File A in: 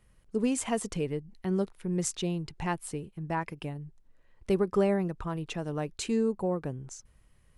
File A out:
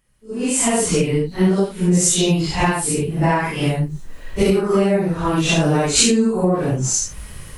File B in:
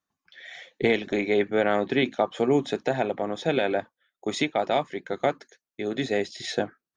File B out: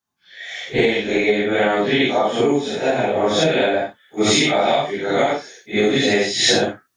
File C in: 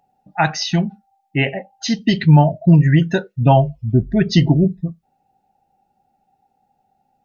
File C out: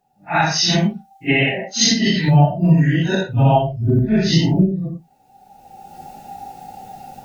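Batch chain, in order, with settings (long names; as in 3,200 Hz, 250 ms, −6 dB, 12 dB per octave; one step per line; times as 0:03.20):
random phases in long frames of 200 ms
camcorder AGC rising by 22 dB per second
high-shelf EQ 2,800 Hz +7 dB
level −2.5 dB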